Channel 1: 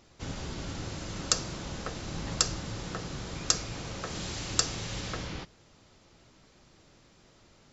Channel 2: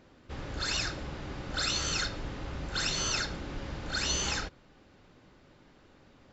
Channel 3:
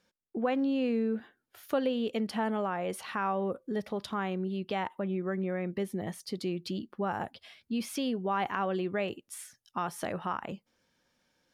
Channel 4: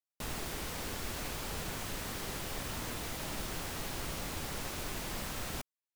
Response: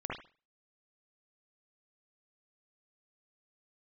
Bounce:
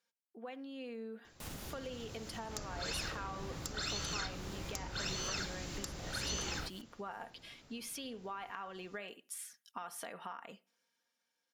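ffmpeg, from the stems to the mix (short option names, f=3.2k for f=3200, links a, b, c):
-filter_complex "[0:a]aeval=exprs='clip(val(0),-1,0.133)':c=same,adelay=1250,volume=-4.5dB[a];[1:a]adelay=2200,volume=-8.5dB[b];[2:a]highpass=f=800:p=1,aecho=1:1:4.3:0.42,dynaudnorm=f=210:g=11:m=10dB,volume=-12dB,asplit=3[c][d][e];[d]volume=-23.5dB[f];[3:a]adelay=1200,volume=-6.5dB[g];[e]apad=whole_len=315719[h];[g][h]sidechaincompress=threshold=-53dB:ratio=4:attack=5.3:release=290[i];[a][c][i]amix=inputs=3:normalize=0,equalizer=f=12k:w=0.47:g=4.5,acompressor=threshold=-42dB:ratio=6,volume=0dB[j];[4:a]atrim=start_sample=2205[k];[f][k]afir=irnorm=-1:irlink=0[l];[b][j][l]amix=inputs=3:normalize=0"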